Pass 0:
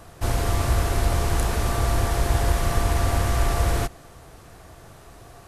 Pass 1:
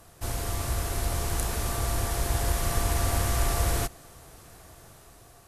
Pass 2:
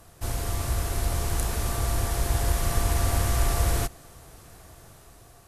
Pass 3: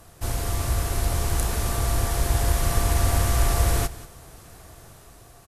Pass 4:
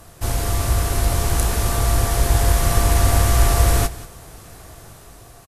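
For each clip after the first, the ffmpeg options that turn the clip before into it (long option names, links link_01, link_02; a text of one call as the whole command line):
ffmpeg -i in.wav -af "aemphasis=mode=production:type=cd,dynaudnorm=framelen=400:gausssize=5:maxgain=5dB,volume=-8.5dB" out.wav
ffmpeg -i in.wav -af "lowshelf=frequency=170:gain=3" out.wav
ffmpeg -i in.wav -af "aecho=1:1:184:0.141,volume=2.5dB" out.wav
ffmpeg -i in.wav -filter_complex "[0:a]asplit=2[link_01][link_02];[link_02]adelay=19,volume=-13dB[link_03];[link_01][link_03]amix=inputs=2:normalize=0,volume=5dB" out.wav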